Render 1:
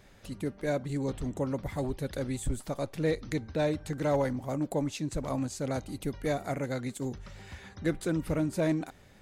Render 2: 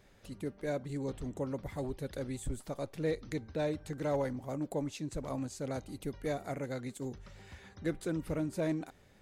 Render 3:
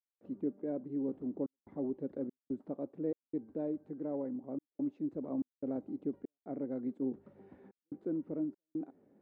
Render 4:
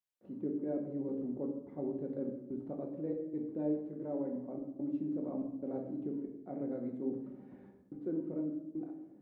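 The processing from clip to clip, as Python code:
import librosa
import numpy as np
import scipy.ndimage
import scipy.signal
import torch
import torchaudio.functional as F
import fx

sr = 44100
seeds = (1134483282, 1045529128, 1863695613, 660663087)

y1 = fx.peak_eq(x, sr, hz=430.0, db=2.5, octaves=0.73)
y1 = y1 * 10.0 ** (-6.0 / 20.0)
y2 = fx.rider(y1, sr, range_db=4, speed_s=0.5)
y2 = fx.ladder_bandpass(y2, sr, hz=320.0, resonance_pct=45)
y2 = fx.step_gate(y2, sr, bpm=72, pattern='.xxxxxx.xxx.xxx', floor_db=-60.0, edge_ms=4.5)
y2 = y2 * 10.0 ** (9.5 / 20.0)
y3 = fx.room_shoebox(y2, sr, seeds[0], volume_m3=290.0, walls='mixed', distance_m=0.97)
y3 = y3 * 10.0 ** (-2.5 / 20.0)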